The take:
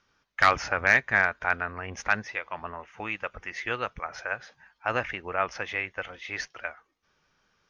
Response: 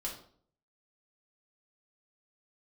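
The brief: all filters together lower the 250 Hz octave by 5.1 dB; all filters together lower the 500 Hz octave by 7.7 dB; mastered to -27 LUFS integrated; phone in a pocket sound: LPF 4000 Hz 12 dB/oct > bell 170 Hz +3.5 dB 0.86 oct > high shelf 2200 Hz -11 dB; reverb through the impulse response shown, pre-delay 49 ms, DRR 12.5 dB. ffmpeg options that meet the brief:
-filter_complex "[0:a]equalizer=f=250:t=o:g=-7,equalizer=f=500:t=o:g=-8,asplit=2[a][b];[1:a]atrim=start_sample=2205,adelay=49[c];[b][c]afir=irnorm=-1:irlink=0,volume=-13dB[d];[a][d]amix=inputs=2:normalize=0,lowpass=4k,equalizer=f=170:t=o:w=0.86:g=3.5,highshelf=f=2.2k:g=-11,volume=6dB"

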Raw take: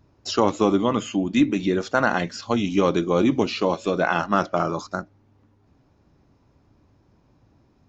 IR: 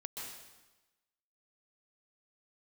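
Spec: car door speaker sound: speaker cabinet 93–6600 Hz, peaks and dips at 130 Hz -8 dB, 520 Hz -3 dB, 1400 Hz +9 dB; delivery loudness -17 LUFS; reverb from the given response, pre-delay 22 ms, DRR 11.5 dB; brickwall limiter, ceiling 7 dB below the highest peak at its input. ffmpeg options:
-filter_complex "[0:a]alimiter=limit=-12dB:level=0:latency=1,asplit=2[a][b];[1:a]atrim=start_sample=2205,adelay=22[c];[b][c]afir=irnorm=-1:irlink=0,volume=-10.5dB[d];[a][d]amix=inputs=2:normalize=0,highpass=93,equalizer=f=130:t=q:w=4:g=-8,equalizer=f=520:t=q:w=4:g=-3,equalizer=f=1.4k:t=q:w=4:g=9,lowpass=f=6.6k:w=0.5412,lowpass=f=6.6k:w=1.3066,volume=7dB"

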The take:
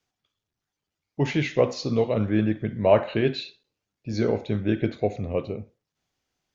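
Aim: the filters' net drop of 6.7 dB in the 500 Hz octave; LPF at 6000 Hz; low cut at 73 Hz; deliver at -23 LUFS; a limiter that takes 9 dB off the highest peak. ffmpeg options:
-af "highpass=73,lowpass=6k,equalizer=f=500:t=o:g=-8.5,volume=8dB,alimiter=limit=-10.5dB:level=0:latency=1"

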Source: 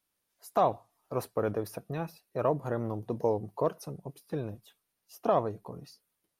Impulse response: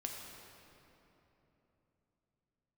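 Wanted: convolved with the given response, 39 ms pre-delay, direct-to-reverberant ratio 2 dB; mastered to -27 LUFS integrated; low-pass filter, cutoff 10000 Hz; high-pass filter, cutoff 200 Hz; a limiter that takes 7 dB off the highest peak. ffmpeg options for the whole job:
-filter_complex "[0:a]highpass=200,lowpass=10k,alimiter=limit=-21dB:level=0:latency=1,asplit=2[a][b];[1:a]atrim=start_sample=2205,adelay=39[c];[b][c]afir=irnorm=-1:irlink=0,volume=-1.5dB[d];[a][d]amix=inputs=2:normalize=0,volume=7.5dB"

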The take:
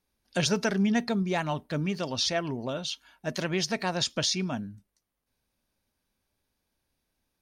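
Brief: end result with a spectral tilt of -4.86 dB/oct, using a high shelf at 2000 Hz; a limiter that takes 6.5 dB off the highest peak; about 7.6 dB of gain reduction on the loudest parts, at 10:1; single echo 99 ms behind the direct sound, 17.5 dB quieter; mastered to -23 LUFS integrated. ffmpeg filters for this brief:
-af "highshelf=f=2k:g=-4,acompressor=threshold=-29dB:ratio=10,alimiter=level_in=2dB:limit=-24dB:level=0:latency=1,volume=-2dB,aecho=1:1:99:0.133,volume=12.5dB"

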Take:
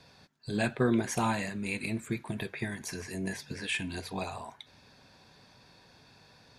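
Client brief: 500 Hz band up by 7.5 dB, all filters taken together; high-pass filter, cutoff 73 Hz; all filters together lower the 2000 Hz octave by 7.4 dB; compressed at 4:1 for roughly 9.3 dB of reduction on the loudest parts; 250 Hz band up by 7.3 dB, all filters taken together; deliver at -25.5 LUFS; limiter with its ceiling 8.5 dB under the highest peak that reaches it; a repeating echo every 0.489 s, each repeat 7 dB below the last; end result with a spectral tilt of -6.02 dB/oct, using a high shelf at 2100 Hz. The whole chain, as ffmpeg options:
-af "highpass=73,equalizer=f=250:t=o:g=7,equalizer=f=500:t=o:g=8,equalizer=f=2k:t=o:g=-8,highshelf=f=2.1k:g=-4,acompressor=threshold=-26dB:ratio=4,alimiter=limit=-23.5dB:level=0:latency=1,aecho=1:1:489|978|1467|1956|2445:0.447|0.201|0.0905|0.0407|0.0183,volume=9dB"

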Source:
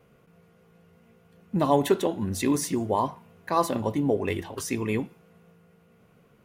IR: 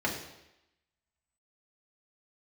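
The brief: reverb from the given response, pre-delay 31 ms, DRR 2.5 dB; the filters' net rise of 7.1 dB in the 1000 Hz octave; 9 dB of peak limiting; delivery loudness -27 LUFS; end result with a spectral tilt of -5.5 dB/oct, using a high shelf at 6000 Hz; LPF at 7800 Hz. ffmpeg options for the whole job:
-filter_complex "[0:a]lowpass=7.8k,equalizer=f=1k:t=o:g=8,highshelf=f=6k:g=7.5,alimiter=limit=-13.5dB:level=0:latency=1,asplit=2[a][b];[1:a]atrim=start_sample=2205,adelay=31[c];[b][c]afir=irnorm=-1:irlink=0,volume=-11.5dB[d];[a][d]amix=inputs=2:normalize=0,volume=-3dB"

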